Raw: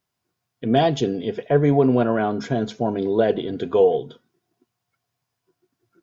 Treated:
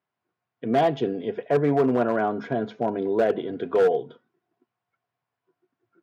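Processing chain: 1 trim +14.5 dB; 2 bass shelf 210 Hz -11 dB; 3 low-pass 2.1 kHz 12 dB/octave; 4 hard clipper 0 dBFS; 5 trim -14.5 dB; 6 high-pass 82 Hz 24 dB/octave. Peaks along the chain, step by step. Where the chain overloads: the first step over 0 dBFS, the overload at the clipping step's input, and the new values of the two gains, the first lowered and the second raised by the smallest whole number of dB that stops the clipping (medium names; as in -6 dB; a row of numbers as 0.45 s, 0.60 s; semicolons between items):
+9.0 dBFS, +6.5 dBFS, +6.5 dBFS, 0.0 dBFS, -14.5 dBFS, -10.0 dBFS; step 1, 6.5 dB; step 1 +7.5 dB, step 5 -7.5 dB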